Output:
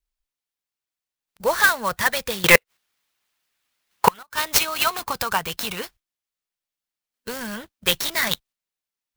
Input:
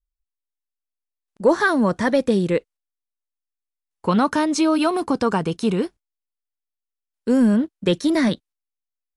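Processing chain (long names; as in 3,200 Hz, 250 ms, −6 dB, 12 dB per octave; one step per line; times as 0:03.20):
guitar amp tone stack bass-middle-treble 10-0-10
0:02.44–0:04.23: mid-hump overdrive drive 30 dB, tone 2,400 Hz, clips at −7.5 dBFS
gate with flip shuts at −13 dBFS, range −33 dB
harmonic and percussive parts rebalanced percussive +8 dB
converter with an unsteady clock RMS 0.032 ms
level +4 dB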